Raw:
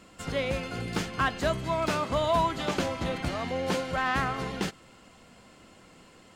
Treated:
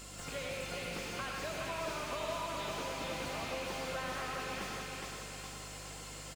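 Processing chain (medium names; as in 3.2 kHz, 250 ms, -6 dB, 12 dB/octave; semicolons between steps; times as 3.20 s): rattle on loud lows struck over -38 dBFS, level -24 dBFS; tone controls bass -10 dB, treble +14 dB; compression, threshold -40 dBFS, peak gain reduction 17.5 dB; feedback delay 415 ms, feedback 50%, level -5 dB; hum 50 Hz, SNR 11 dB; on a send at -1.5 dB: reverberation RT60 1.2 s, pre-delay 72 ms; on the sum: slew-rate limiter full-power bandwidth 25 Hz; trim +1 dB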